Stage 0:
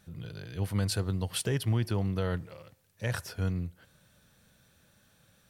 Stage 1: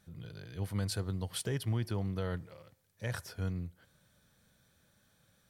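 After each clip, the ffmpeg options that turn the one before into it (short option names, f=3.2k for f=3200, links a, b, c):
-af "bandreject=f=2.7k:w=13,volume=-5dB"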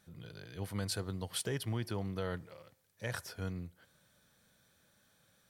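-af "lowshelf=f=160:g=-8.5,volume=1dB"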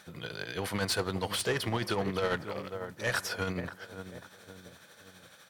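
-filter_complex "[0:a]asplit=2[a][b];[b]adelay=540,lowpass=f=1.1k:p=1,volume=-12dB,asplit=2[c][d];[d]adelay=540,lowpass=f=1.1k:p=1,volume=0.47,asplit=2[e][f];[f]adelay=540,lowpass=f=1.1k:p=1,volume=0.47,asplit=2[g][h];[h]adelay=540,lowpass=f=1.1k:p=1,volume=0.47,asplit=2[i][j];[j]adelay=540,lowpass=f=1.1k:p=1,volume=0.47[k];[a][c][e][g][i][k]amix=inputs=6:normalize=0,asplit=2[l][m];[m]highpass=f=720:p=1,volume=21dB,asoftclip=type=tanh:threshold=-23dB[n];[l][n]amix=inputs=2:normalize=0,lowpass=f=4.2k:p=1,volume=-6dB,tremolo=f=12:d=0.46,volume=4.5dB"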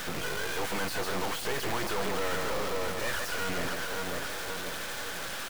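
-filter_complex "[0:a]aecho=1:1:142:0.266,asplit=2[a][b];[b]highpass=f=720:p=1,volume=37dB,asoftclip=type=tanh:threshold=-19dB[c];[a][c]amix=inputs=2:normalize=0,lowpass=f=1.7k:p=1,volume=-6dB,acrusher=bits=3:dc=4:mix=0:aa=0.000001,volume=-1dB"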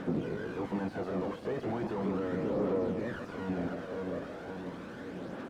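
-af "bandpass=f=250:t=q:w=1.6:csg=0,aphaser=in_gain=1:out_gain=1:delay=1.9:decay=0.35:speed=0.37:type=triangular,volume=7.5dB"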